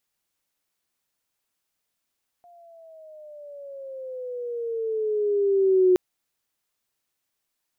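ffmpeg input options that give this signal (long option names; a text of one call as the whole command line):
ffmpeg -f lavfi -i "aevalsrc='pow(10,(-13.5+35*(t/3.52-1))/20)*sin(2*PI*705*3.52/(-11.5*log(2)/12)*(exp(-11.5*log(2)/12*t/3.52)-1))':duration=3.52:sample_rate=44100" out.wav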